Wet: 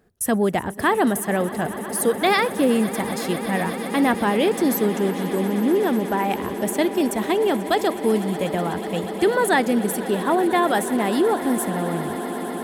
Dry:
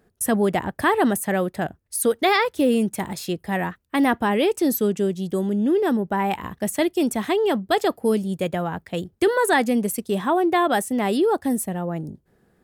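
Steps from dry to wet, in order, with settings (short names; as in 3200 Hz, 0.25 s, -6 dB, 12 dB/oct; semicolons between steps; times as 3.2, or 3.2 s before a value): swelling echo 0.123 s, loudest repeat 8, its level -18 dB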